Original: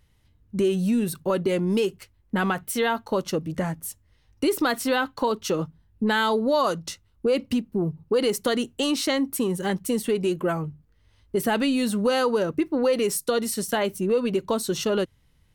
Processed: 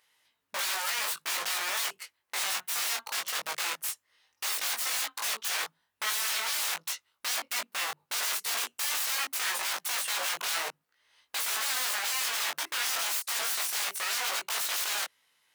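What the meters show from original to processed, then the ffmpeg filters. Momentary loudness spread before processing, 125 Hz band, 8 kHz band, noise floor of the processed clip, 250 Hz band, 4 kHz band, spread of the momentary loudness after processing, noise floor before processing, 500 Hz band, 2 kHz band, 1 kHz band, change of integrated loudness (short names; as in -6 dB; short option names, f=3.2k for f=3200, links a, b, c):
7 LU, under -35 dB, +4.5 dB, -79 dBFS, -35.5 dB, +2.0 dB, 6 LU, -63 dBFS, -23.5 dB, -0.5 dB, -7.0 dB, -5.0 dB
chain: -af "aeval=exprs='(mod(26.6*val(0)+1,2)-1)/26.6':c=same,highpass=890,flanger=delay=18:depth=3:speed=0.19,volume=6.5dB"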